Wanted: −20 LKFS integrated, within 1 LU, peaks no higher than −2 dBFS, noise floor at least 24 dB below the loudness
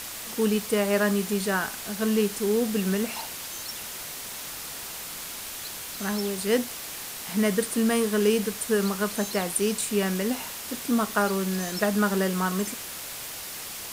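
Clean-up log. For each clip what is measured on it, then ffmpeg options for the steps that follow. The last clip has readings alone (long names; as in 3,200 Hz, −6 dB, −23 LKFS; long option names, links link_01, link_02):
background noise floor −37 dBFS; target noise floor −51 dBFS; integrated loudness −27.0 LKFS; sample peak −9.0 dBFS; target loudness −20.0 LKFS
→ -af "afftdn=noise_reduction=14:noise_floor=-37"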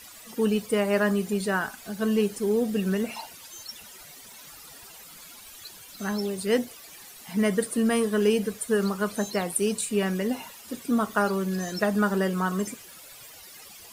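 background noise floor −47 dBFS; target noise floor −51 dBFS
→ -af "afftdn=noise_reduction=6:noise_floor=-47"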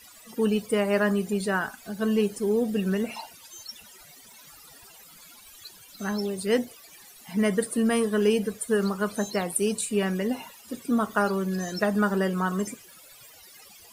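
background noise floor −51 dBFS; integrated loudness −26.5 LKFS; sample peak −9.0 dBFS; target loudness −20.0 LKFS
→ -af "volume=6.5dB"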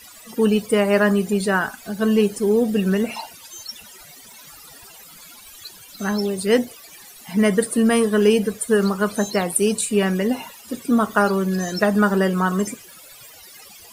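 integrated loudness −20.0 LKFS; sample peak −2.5 dBFS; background noise floor −44 dBFS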